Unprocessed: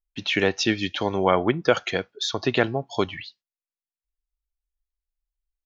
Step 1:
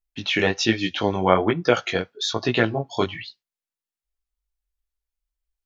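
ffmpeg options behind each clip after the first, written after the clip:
-af "flanger=delay=16.5:depth=5.6:speed=1.2,volume=4.5dB"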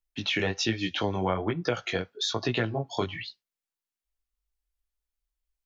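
-filter_complex "[0:a]acrossover=split=130[a][b];[b]acompressor=threshold=-24dB:ratio=4[c];[a][c]amix=inputs=2:normalize=0,volume=-1.5dB"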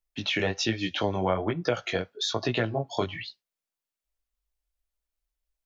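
-af "equalizer=f=610:w=3.3:g=5"

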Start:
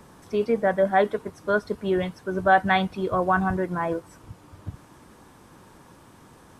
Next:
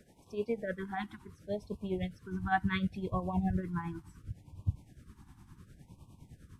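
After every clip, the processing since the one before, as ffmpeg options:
-af "asubboost=boost=6.5:cutoff=170,tremolo=f=9.8:d=0.66,afftfilt=real='re*(1-between(b*sr/1024,490*pow(1700/490,0.5+0.5*sin(2*PI*0.7*pts/sr))/1.41,490*pow(1700/490,0.5+0.5*sin(2*PI*0.7*pts/sr))*1.41))':imag='im*(1-between(b*sr/1024,490*pow(1700/490,0.5+0.5*sin(2*PI*0.7*pts/sr))/1.41,490*pow(1700/490,0.5+0.5*sin(2*PI*0.7*pts/sr))*1.41))':win_size=1024:overlap=0.75,volume=-8.5dB"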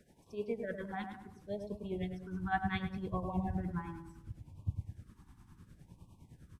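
-filter_complex "[0:a]asplit=2[a][b];[b]adelay=103,lowpass=f=1.3k:p=1,volume=-5dB,asplit=2[c][d];[d]adelay=103,lowpass=f=1.3k:p=1,volume=0.5,asplit=2[e][f];[f]adelay=103,lowpass=f=1.3k:p=1,volume=0.5,asplit=2[g][h];[h]adelay=103,lowpass=f=1.3k:p=1,volume=0.5,asplit=2[i][j];[j]adelay=103,lowpass=f=1.3k:p=1,volume=0.5,asplit=2[k][l];[l]adelay=103,lowpass=f=1.3k:p=1,volume=0.5[m];[a][c][e][g][i][k][m]amix=inputs=7:normalize=0,volume=-4dB"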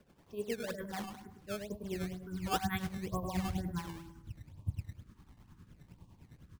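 -af "acrusher=samples=13:mix=1:aa=0.000001:lfo=1:lforange=20.8:lforate=2.1"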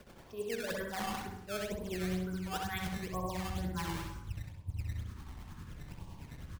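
-filter_complex "[0:a]equalizer=f=210:t=o:w=2.1:g=-6.5,areverse,acompressor=threshold=-47dB:ratio=12,areverse,asplit=2[a][b];[b]adelay=65,lowpass=f=4.6k:p=1,volume=-4dB,asplit=2[c][d];[d]adelay=65,lowpass=f=4.6k:p=1,volume=0.39,asplit=2[e][f];[f]adelay=65,lowpass=f=4.6k:p=1,volume=0.39,asplit=2[g][h];[h]adelay=65,lowpass=f=4.6k:p=1,volume=0.39,asplit=2[i][j];[j]adelay=65,lowpass=f=4.6k:p=1,volume=0.39[k];[a][c][e][g][i][k]amix=inputs=6:normalize=0,volume=12dB"

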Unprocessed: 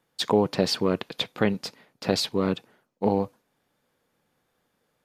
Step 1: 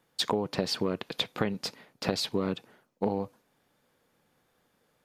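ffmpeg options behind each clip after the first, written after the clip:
-af "acompressor=threshold=-27dB:ratio=6,volume=2dB"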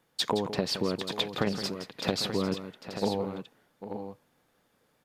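-af "aecho=1:1:168|798|883:0.282|0.211|0.335"

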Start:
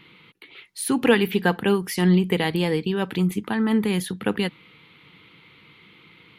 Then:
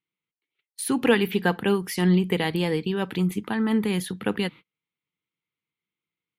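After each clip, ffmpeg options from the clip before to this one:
-af "agate=range=-38dB:threshold=-38dB:ratio=16:detection=peak,volume=-2dB"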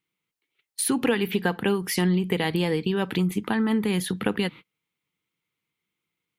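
-af "acompressor=threshold=-29dB:ratio=3,volume=6.5dB"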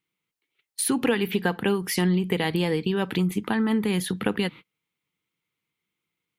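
-af anull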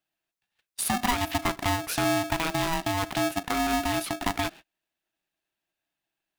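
-af "aeval=exprs='val(0)*sgn(sin(2*PI*490*n/s))':c=same,volume=-3dB"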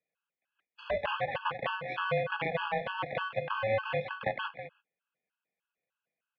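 -af "aecho=1:1:196:0.266,highpass=f=370:t=q:w=0.5412,highpass=f=370:t=q:w=1.307,lowpass=f=3.1k:t=q:w=0.5176,lowpass=f=3.1k:t=q:w=0.7071,lowpass=f=3.1k:t=q:w=1.932,afreqshift=-160,afftfilt=real='re*gt(sin(2*PI*3.3*pts/sr)*(1-2*mod(floor(b*sr/1024/840),2)),0)':imag='im*gt(sin(2*PI*3.3*pts/sr)*(1-2*mod(floor(b*sr/1024/840),2)),0)':win_size=1024:overlap=0.75"

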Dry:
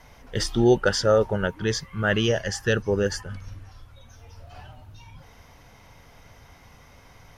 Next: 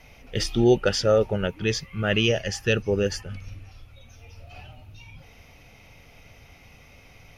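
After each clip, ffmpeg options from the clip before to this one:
-af "equalizer=f=1k:t=o:w=0.33:g=-10,equalizer=f=1.6k:t=o:w=0.33:g=-7,equalizer=f=2.5k:t=o:w=0.33:g=11,equalizer=f=8k:t=o:w=0.33:g=-6"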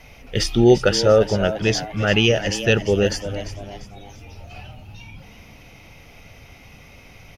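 -filter_complex "[0:a]asplit=5[a][b][c][d][e];[b]adelay=345,afreqshift=100,volume=-12.5dB[f];[c]adelay=690,afreqshift=200,volume=-20.5dB[g];[d]adelay=1035,afreqshift=300,volume=-28.4dB[h];[e]adelay=1380,afreqshift=400,volume=-36.4dB[i];[a][f][g][h][i]amix=inputs=5:normalize=0,volume=5dB"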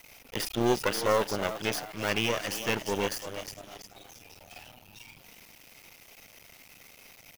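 -filter_complex "[0:a]aeval=exprs='max(val(0),0)':c=same,acrossover=split=2800[a][b];[b]acompressor=threshold=-35dB:ratio=4:attack=1:release=60[c];[a][c]amix=inputs=2:normalize=0,aemphasis=mode=production:type=bsi,volume=-4.5dB"

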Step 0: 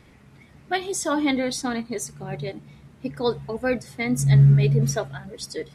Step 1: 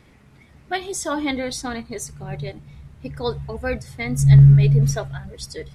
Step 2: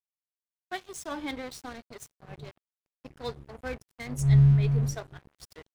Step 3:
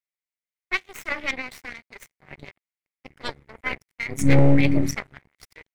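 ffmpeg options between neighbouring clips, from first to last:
-af "asubboost=boost=10:cutoff=87"
-af "aeval=exprs='sgn(val(0))*max(abs(val(0))-0.0251,0)':c=same,volume=-8.5dB"
-af "aeval=exprs='0.299*(cos(1*acos(clip(val(0)/0.299,-1,1)))-cos(1*PI/2))+0.0596*(cos(3*acos(clip(val(0)/0.299,-1,1)))-cos(3*PI/2))+0.119*(cos(4*acos(clip(val(0)/0.299,-1,1)))-cos(4*PI/2))+0.0335*(cos(8*acos(clip(val(0)/0.299,-1,1)))-cos(8*PI/2))':c=same,equalizer=f=2.1k:w=2.7:g=14.5,volume=10.5dB,asoftclip=hard,volume=-10.5dB,volume=3.5dB"

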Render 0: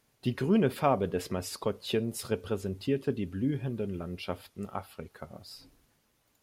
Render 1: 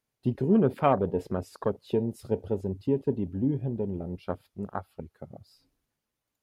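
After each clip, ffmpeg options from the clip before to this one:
-af "afwtdn=0.0158,volume=3dB"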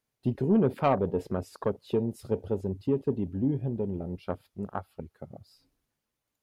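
-af "asoftclip=type=tanh:threshold=-13.5dB"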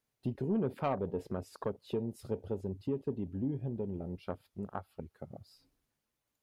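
-af "acompressor=threshold=-40dB:ratio=1.5,volume=-1.5dB"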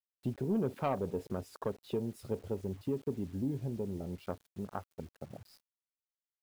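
-af "acrusher=bits=9:mix=0:aa=0.000001"

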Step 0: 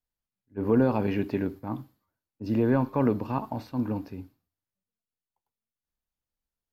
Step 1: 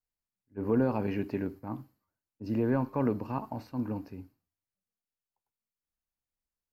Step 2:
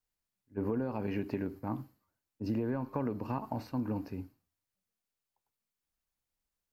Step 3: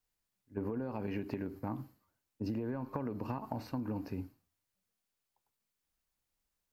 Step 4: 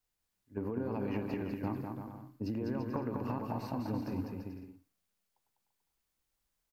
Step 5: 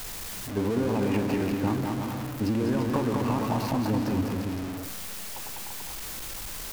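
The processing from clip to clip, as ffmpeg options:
-af "equalizer=f=3.5k:t=o:w=0.21:g=-10.5,volume=-4.5dB"
-af "acompressor=threshold=-33dB:ratio=10,volume=3.5dB"
-af "acompressor=threshold=-36dB:ratio=6,volume=2.5dB"
-af "aecho=1:1:200|340|438|506.6|554.6:0.631|0.398|0.251|0.158|0.1"
-af "aeval=exprs='val(0)+0.5*0.0133*sgn(val(0))':c=same,volume=7.5dB"

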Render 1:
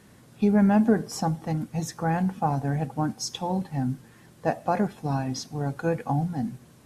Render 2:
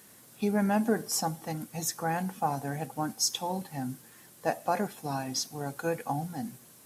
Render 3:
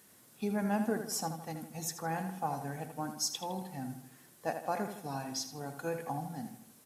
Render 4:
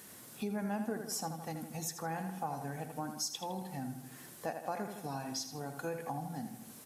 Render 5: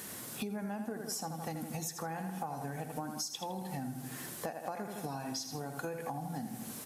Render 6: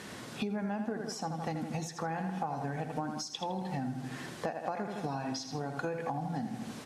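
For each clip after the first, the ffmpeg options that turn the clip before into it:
-af "aemphasis=mode=production:type=bsi,volume=-2.5dB"
-filter_complex "[0:a]asplit=2[a][b];[b]adelay=80,lowpass=f=4.5k:p=1,volume=-8dB,asplit=2[c][d];[d]adelay=80,lowpass=f=4.5k:p=1,volume=0.48,asplit=2[e][f];[f]adelay=80,lowpass=f=4.5k:p=1,volume=0.48,asplit=2[g][h];[h]adelay=80,lowpass=f=4.5k:p=1,volume=0.48,asplit=2[i][j];[j]adelay=80,lowpass=f=4.5k:p=1,volume=0.48,asplit=2[k][l];[l]adelay=80,lowpass=f=4.5k:p=1,volume=0.48[m];[a][c][e][g][i][k][m]amix=inputs=7:normalize=0,volume=-6dB"
-af "acompressor=threshold=-52dB:ratio=2,volume=8dB"
-af "acompressor=threshold=-44dB:ratio=6,volume=8dB"
-af "lowpass=4.5k,volume=4dB"

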